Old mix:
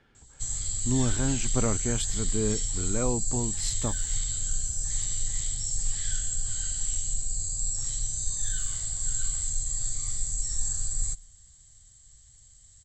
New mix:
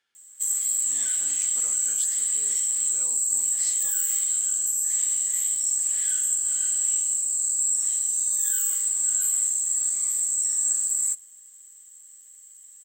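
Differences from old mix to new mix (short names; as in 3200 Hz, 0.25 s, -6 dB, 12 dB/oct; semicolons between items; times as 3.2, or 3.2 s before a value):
background: remove EQ curve 120 Hz 0 dB, 290 Hz -29 dB, 710 Hz -14 dB, 1000 Hz -16 dB, 2600 Hz -12 dB, 4500 Hz +3 dB, 7000 Hz -1 dB, 10000 Hz -29 dB; master: add differentiator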